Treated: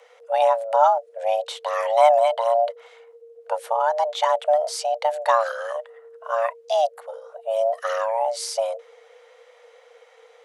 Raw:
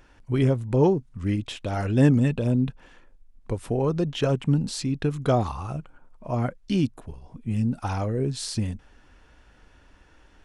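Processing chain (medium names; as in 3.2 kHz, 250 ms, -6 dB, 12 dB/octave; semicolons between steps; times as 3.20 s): frequency shift +450 Hz; trim +2.5 dB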